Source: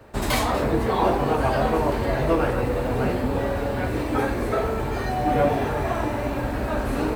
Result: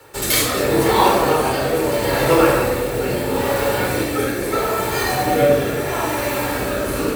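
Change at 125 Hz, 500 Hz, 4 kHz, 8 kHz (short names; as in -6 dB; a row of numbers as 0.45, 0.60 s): +1.0, +6.0, +10.5, +15.0 dB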